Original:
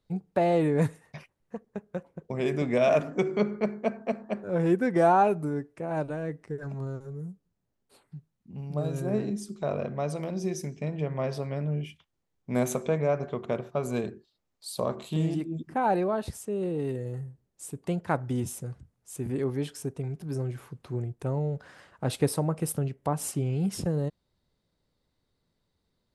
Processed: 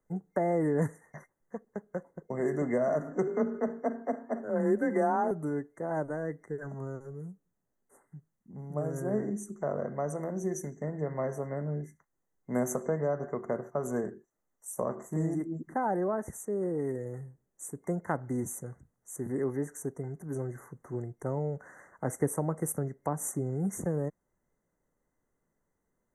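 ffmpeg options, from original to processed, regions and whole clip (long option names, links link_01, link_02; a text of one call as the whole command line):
ffmpeg -i in.wav -filter_complex "[0:a]asettb=1/sr,asplit=3[link_01][link_02][link_03];[link_01]atrim=end=3.274[link_04];[link_02]atrim=start=3.27:end=5.31,asetpts=PTS-STARTPTS,afade=type=in:duration=0.004:curve=qsin,afade=type=out:start_time=2.036:duration=0.004:curve=qsin,afreqshift=24,aecho=1:1:70|273:0.112|0.178,atrim=end_sample=89964[link_05];[link_03]atrim=start=5.306[link_06];[link_04][link_05]acrossfade=duration=0.004:curve1=hsin:curve2=qsin[link_07];[link_07][link_06]acrossfade=duration=0.004:curve1=qsin:curve2=hsin,afftfilt=real='re*(1-between(b*sr/4096,2100,5800))':imag='im*(1-between(b*sr/4096,2100,5800))':win_size=4096:overlap=0.75,equalizer=frequency=80:width_type=o:width=1.8:gain=-10,acrossover=split=310[link_08][link_09];[link_09]acompressor=threshold=-29dB:ratio=3[link_10];[link_08][link_10]amix=inputs=2:normalize=0" out.wav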